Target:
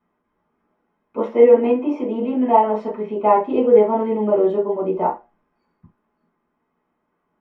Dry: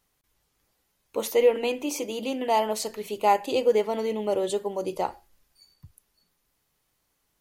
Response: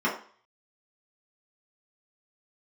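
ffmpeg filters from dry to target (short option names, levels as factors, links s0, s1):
-filter_complex "[0:a]lowpass=1400[s0];[1:a]atrim=start_sample=2205,atrim=end_sample=3528[s1];[s0][s1]afir=irnorm=-1:irlink=0,volume=0.562"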